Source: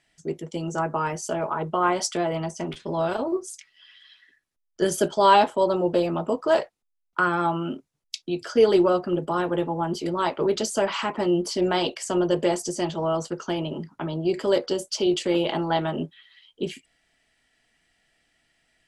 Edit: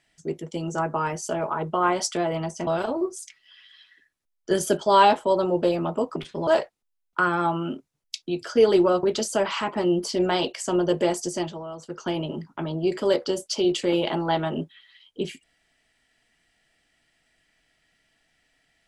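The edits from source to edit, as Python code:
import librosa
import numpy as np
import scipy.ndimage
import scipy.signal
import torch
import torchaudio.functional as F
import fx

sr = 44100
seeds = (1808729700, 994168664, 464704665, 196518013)

y = fx.edit(x, sr, fx.move(start_s=2.67, length_s=0.31, to_s=6.47),
    fx.cut(start_s=9.03, length_s=1.42),
    fx.fade_down_up(start_s=12.77, length_s=0.73, db=-12.0, fade_s=0.29), tone=tone)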